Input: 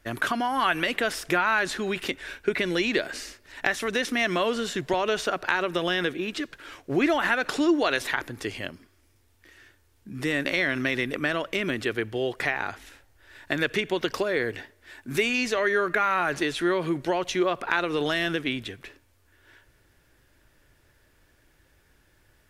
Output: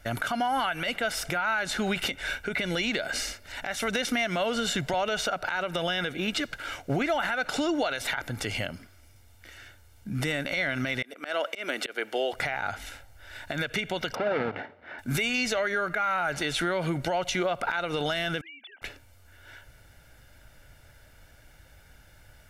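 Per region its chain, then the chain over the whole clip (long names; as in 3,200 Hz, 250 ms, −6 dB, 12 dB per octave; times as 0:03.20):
0:11.02–0:12.33: high-pass filter 310 Hz 24 dB per octave + volume swells 236 ms
0:14.15–0:14.99: each half-wave held at its own peak + band-pass filter 200–2,200 Hz + high-frequency loss of the air 210 metres
0:18.41–0:18.82: three sine waves on the formant tracks + high-pass filter 800 Hz + downward compressor 10 to 1, threshold −50 dBFS
whole clip: comb filter 1.4 ms, depth 58%; downward compressor, threshold −29 dBFS; brickwall limiter −23 dBFS; level +5.5 dB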